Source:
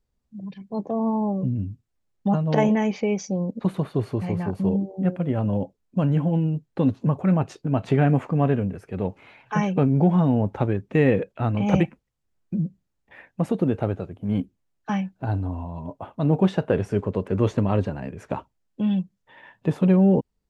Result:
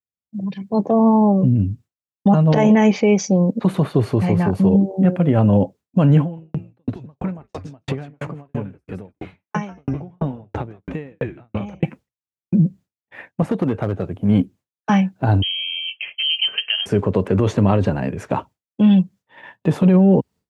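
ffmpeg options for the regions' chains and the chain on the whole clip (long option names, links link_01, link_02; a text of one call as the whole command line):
ffmpeg -i in.wav -filter_complex "[0:a]asettb=1/sr,asplit=3[link_01][link_02][link_03];[link_01]atrim=end=6.214[link_04];[link_02]atrim=start=6.21:end=11.83,asetpts=PTS-STARTPTS,afade=type=in:duration=0.004:curve=qsin,afade=type=out:start_time=5.616:duration=0.004:curve=qsin,acompressor=threshold=-27dB:ratio=2.5:attack=3.2:release=140:knee=1:detection=peak,asplit=5[link_05][link_06][link_07][link_08][link_09];[link_06]adelay=161,afreqshift=-140,volume=-4dB[link_10];[link_07]adelay=322,afreqshift=-280,volume=-14.5dB[link_11];[link_08]adelay=483,afreqshift=-420,volume=-24.9dB[link_12];[link_09]adelay=644,afreqshift=-560,volume=-35.4dB[link_13];[link_05][link_10][link_11][link_12][link_13]amix=inputs=5:normalize=0,atrim=end_sample=247842,aeval=exprs='val(0)*pow(10,-37*if(lt(mod(3*n/s,1),2*abs(3)/1000),1-mod(3*n/s,1)/(2*abs(3)/1000),(mod(3*n/s,1)-2*abs(3)/1000)/(1-2*abs(3)/1000))/20)':channel_layout=same[link_14];[link_03]atrim=start=11.826[link_15];[link_04][link_14]acrossfade=duration=0.004:curve1=hsin:curve2=qsin[link_16];[link_16][link_15]acrossfade=duration=0.004:curve1=qsin:curve2=hsin,asettb=1/sr,asplit=3[link_17][link_18][link_19];[link_17]atrim=end=13.424[link_20];[link_18]atrim=start=13.42:end=14.09,asetpts=PTS-STARTPTS,afade=type=in:duration=0.004:curve=qsin,afade=type=out:start_time=0.666:duration=0.004:curve=qsin,acrossover=split=820|2000[link_21][link_22][link_23];[link_21]acompressor=threshold=-26dB:ratio=4[link_24];[link_22]acompressor=threshold=-44dB:ratio=4[link_25];[link_23]acompressor=threshold=-60dB:ratio=4[link_26];[link_24][link_25][link_26]amix=inputs=3:normalize=0,volume=22.5dB,asoftclip=hard,volume=-22.5dB[link_27];[link_19]atrim=start=14.086[link_28];[link_20][link_27]acrossfade=duration=0.004:curve1=hsin:curve2=qsin[link_29];[link_29][link_28]acrossfade=duration=0.004:curve1=qsin:curve2=hsin,asettb=1/sr,asplit=3[link_30][link_31][link_32];[link_30]atrim=end=15.424[link_33];[link_31]atrim=start=15.42:end=16.86,asetpts=PTS-STARTPTS,afade=type=in:duration=0.004:curve=qsin,afade=type=out:start_time=1.436:duration=0.004:curve=qsin,acompressor=threshold=-35dB:ratio=2:attack=3.2:release=140:knee=1:detection=peak,lowpass=frequency=2800:width_type=q:width=0.5098,lowpass=frequency=2800:width_type=q:width=0.6013,lowpass=frequency=2800:width_type=q:width=0.9,lowpass=frequency=2800:width_type=q:width=2.563,afreqshift=-3300[link_34];[link_32]atrim=start=16.856[link_35];[link_33][link_34]acrossfade=duration=0.004:curve1=hsin:curve2=qsin[link_36];[link_36][link_35]acrossfade=duration=0.004:curve1=qsin:curve2=hsin,highpass=frequency=77:width=0.5412,highpass=frequency=77:width=1.3066,agate=range=-33dB:threshold=-44dB:ratio=3:detection=peak,alimiter=level_in=15.5dB:limit=-1dB:release=50:level=0:latency=1,volume=-5.5dB" out.wav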